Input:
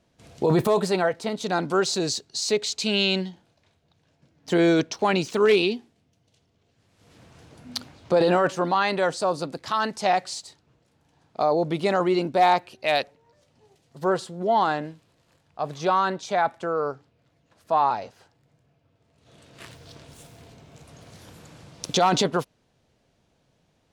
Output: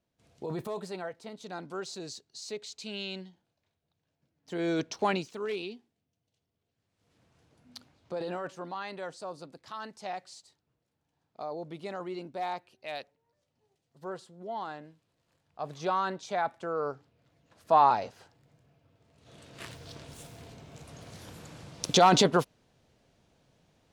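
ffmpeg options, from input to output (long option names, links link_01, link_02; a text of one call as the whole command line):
ffmpeg -i in.wav -af "volume=11dB,afade=type=in:start_time=4.52:duration=0.55:silence=0.298538,afade=type=out:start_time=5.07:duration=0.21:silence=0.281838,afade=type=in:start_time=14.85:duration=0.89:silence=0.375837,afade=type=in:start_time=16.65:duration=1.1:silence=0.421697" out.wav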